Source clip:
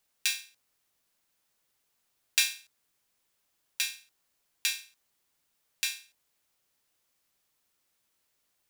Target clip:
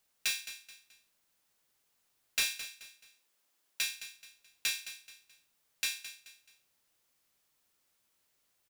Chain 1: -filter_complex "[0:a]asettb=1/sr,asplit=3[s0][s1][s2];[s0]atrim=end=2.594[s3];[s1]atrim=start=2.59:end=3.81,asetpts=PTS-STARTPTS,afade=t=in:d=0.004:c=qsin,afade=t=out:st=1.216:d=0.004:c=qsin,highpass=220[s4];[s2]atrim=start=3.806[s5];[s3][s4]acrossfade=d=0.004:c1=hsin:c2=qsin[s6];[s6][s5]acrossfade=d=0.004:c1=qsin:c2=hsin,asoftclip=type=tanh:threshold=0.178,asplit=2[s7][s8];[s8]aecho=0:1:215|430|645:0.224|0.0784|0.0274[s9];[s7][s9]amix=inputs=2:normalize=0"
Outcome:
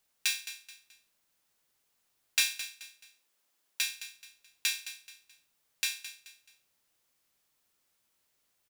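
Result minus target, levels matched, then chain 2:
saturation: distortion -7 dB
-filter_complex "[0:a]asettb=1/sr,asplit=3[s0][s1][s2];[s0]atrim=end=2.594[s3];[s1]atrim=start=2.59:end=3.81,asetpts=PTS-STARTPTS,afade=t=in:d=0.004:c=qsin,afade=t=out:st=1.216:d=0.004:c=qsin,highpass=220[s4];[s2]atrim=start=3.806[s5];[s3][s4]acrossfade=d=0.004:c1=hsin:c2=qsin[s6];[s6][s5]acrossfade=d=0.004:c1=qsin:c2=hsin,asoftclip=type=tanh:threshold=0.0631,asplit=2[s7][s8];[s8]aecho=0:1:215|430|645:0.224|0.0784|0.0274[s9];[s7][s9]amix=inputs=2:normalize=0"

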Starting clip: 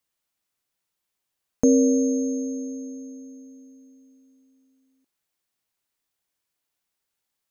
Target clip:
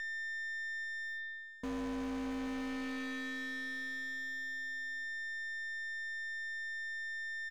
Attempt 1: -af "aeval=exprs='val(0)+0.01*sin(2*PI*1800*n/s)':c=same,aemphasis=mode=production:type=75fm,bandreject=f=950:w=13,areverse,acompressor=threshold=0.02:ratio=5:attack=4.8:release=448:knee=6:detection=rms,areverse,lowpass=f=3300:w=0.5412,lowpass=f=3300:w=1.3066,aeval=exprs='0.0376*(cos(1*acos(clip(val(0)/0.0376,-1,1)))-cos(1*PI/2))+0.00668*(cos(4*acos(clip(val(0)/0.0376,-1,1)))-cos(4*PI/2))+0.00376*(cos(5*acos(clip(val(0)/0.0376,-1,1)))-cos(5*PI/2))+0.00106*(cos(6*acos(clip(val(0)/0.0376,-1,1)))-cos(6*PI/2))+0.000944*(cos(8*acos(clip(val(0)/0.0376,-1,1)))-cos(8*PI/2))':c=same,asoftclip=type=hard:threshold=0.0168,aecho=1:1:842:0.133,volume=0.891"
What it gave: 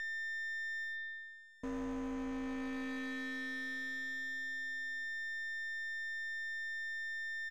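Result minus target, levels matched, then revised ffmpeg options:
compression: peak gain reduction +7 dB
-af "aeval=exprs='val(0)+0.01*sin(2*PI*1800*n/s)':c=same,aemphasis=mode=production:type=75fm,bandreject=f=950:w=13,areverse,acompressor=threshold=0.0531:ratio=5:attack=4.8:release=448:knee=6:detection=rms,areverse,lowpass=f=3300:w=0.5412,lowpass=f=3300:w=1.3066,aeval=exprs='0.0376*(cos(1*acos(clip(val(0)/0.0376,-1,1)))-cos(1*PI/2))+0.00668*(cos(4*acos(clip(val(0)/0.0376,-1,1)))-cos(4*PI/2))+0.00376*(cos(5*acos(clip(val(0)/0.0376,-1,1)))-cos(5*PI/2))+0.00106*(cos(6*acos(clip(val(0)/0.0376,-1,1)))-cos(6*PI/2))+0.000944*(cos(8*acos(clip(val(0)/0.0376,-1,1)))-cos(8*PI/2))':c=same,asoftclip=type=hard:threshold=0.0168,aecho=1:1:842:0.133,volume=0.891"

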